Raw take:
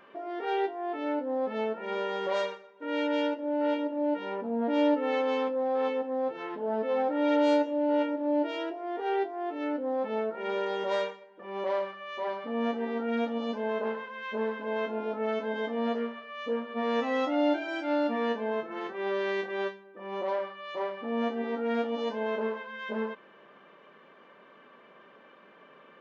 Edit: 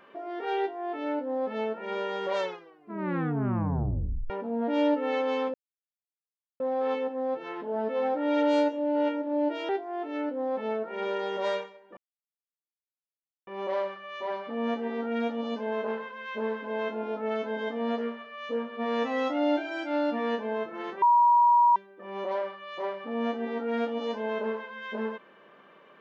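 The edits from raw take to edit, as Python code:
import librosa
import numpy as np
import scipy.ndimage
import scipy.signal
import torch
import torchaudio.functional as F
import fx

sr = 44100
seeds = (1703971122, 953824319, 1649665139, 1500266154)

y = fx.edit(x, sr, fx.tape_stop(start_s=2.35, length_s=1.95),
    fx.insert_silence(at_s=5.54, length_s=1.06),
    fx.cut(start_s=8.63, length_s=0.53),
    fx.insert_silence(at_s=11.44, length_s=1.5),
    fx.bleep(start_s=18.99, length_s=0.74, hz=958.0, db=-16.5), tone=tone)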